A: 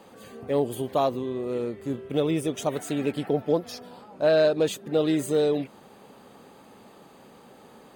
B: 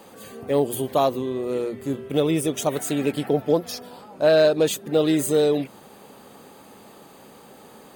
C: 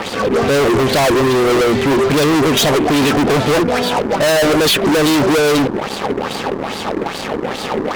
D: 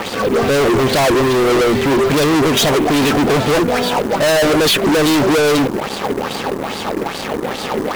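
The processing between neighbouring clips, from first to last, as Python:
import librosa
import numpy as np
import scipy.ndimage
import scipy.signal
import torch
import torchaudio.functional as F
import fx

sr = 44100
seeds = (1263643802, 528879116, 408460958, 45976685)

y1 = fx.high_shelf(x, sr, hz=7500.0, db=9.5)
y1 = fx.hum_notches(y1, sr, base_hz=60, count=4)
y1 = F.gain(torch.from_numpy(y1), 3.5).numpy()
y2 = fx.filter_lfo_lowpass(y1, sr, shape='sine', hz=2.4, low_hz=320.0, high_hz=4600.0, q=4.1)
y2 = fx.fuzz(y2, sr, gain_db=39.0, gate_db=-48.0)
y2 = F.gain(torch.from_numpy(y2), 1.5).numpy()
y3 = fx.quant_float(y2, sr, bits=2)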